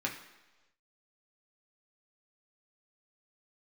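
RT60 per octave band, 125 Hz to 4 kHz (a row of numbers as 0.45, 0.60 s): 0.90, 0.95, 1.2, 1.1, 1.1, 1.1 s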